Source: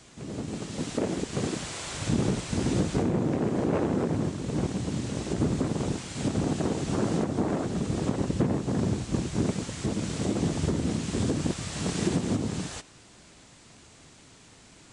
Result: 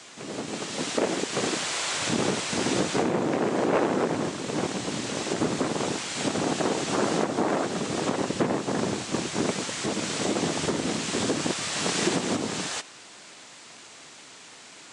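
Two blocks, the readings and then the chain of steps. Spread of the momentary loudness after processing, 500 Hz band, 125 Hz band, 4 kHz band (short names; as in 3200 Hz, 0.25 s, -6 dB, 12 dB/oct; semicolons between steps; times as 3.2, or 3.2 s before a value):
20 LU, +4.0 dB, -6.5 dB, +9.0 dB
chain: weighting filter A; gain +8 dB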